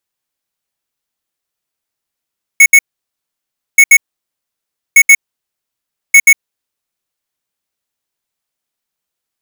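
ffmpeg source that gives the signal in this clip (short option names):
-f lavfi -i "aevalsrc='0.708*(2*lt(mod(2210*t,1),0.5)-1)*clip(min(mod(mod(t,1.18),0.13),0.06-mod(mod(t,1.18),0.13))/0.005,0,1)*lt(mod(t,1.18),0.26)':d=4.72:s=44100"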